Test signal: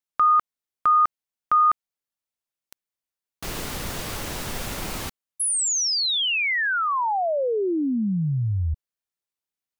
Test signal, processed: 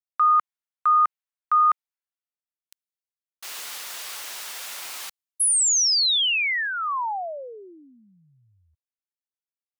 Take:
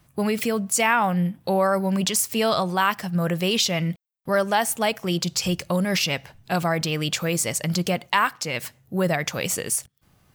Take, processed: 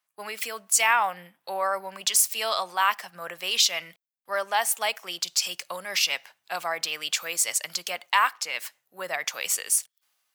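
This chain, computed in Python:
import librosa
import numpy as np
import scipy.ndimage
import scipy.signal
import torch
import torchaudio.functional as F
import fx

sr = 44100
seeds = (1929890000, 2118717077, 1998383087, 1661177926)

y = scipy.signal.sosfilt(scipy.signal.butter(2, 950.0, 'highpass', fs=sr, output='sos'), x)
y = fx.dynamic_eq(y, sr, hz=1500.0, q=3.0, threshold_db=-35.0, ratio=4.0, max_db=-4)
y = fx.band_widen(y, sr, depth_pct=40)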